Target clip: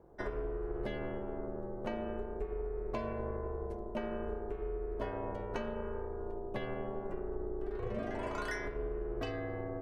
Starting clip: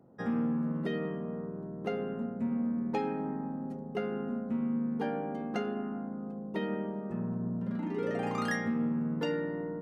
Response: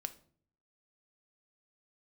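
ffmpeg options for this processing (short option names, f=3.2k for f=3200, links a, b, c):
-af "acompressor=threshold=-34dB:ratio=6,bandreject=f=116:t=h:w=4,bandreject=f=232:t=h:w=4,bandreject=f=348:t=h:w=4,bandreject=f=464:t=h:w=4,aeval=exprs='val(0)*sin(2*PI*190*n/s)':c=same,volume=3.5dB"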